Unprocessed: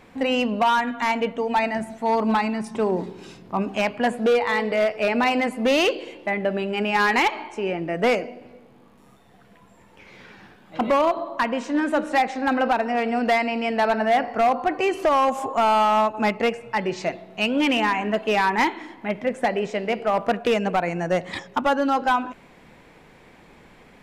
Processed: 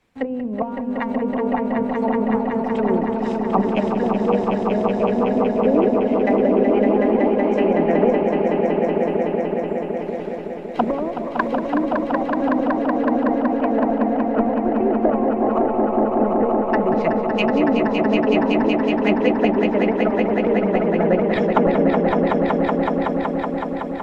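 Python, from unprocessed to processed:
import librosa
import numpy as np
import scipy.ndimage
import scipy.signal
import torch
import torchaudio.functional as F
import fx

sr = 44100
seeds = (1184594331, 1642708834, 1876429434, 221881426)

y = fx.law_mismatch(x, sr, coded='A')
y = fx.env_lowpass_down(y, sr, base_hz=370.0, full_db=-19.5)
y = fx.echo_swell(y, sr, ms=187, loudest=5, wet_db=-4.5)
y = fx.hpss(y, sr, part='harmonic', gain_db=-5)
y = fx.band_widen(y, sr, depth_pct=40)
y = y * 10.0 ** (7.5 / 20.0)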